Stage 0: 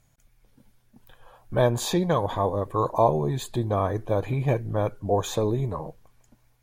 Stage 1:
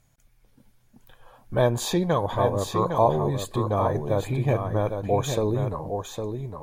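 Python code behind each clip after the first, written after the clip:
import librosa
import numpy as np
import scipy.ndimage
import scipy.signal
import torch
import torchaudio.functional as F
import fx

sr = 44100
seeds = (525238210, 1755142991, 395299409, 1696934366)

y = x + 10.0 ** (-6.5 / 20.0) * np.pad(x, (int(808 * sr / 1000.0), 0))[:len(x)]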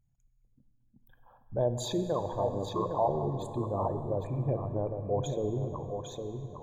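y = fx.envelope_sharpen(x, sr, power=2.0)
y = fx.rev_plate(y, sr, seeds[0], rt60_s=4.0, hf_ratio=0.55, predelay_ms=0, drr_db=9.0)
y = y * 10.0 ** (-8.0 / 20.0)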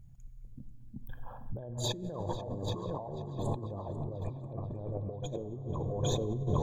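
y = fx.low_shelf(x, sr, hz=330.0, db=10.5)
y = fx.over_compress(y, sr, threshold_db=-37.0, ratio=-1.0)
y = fx.echo_tape(y, sr, ms=491, feedback_pct=61, wet_db=-14.5, lp_hz=5100.0, drive_db=18.0, wow_cents=13)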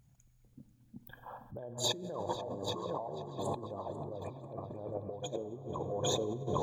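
y = fx.highpass(x, sr, hz=460.0, slope=6)
y = y * 10.0 ** (3.5 / 20.0)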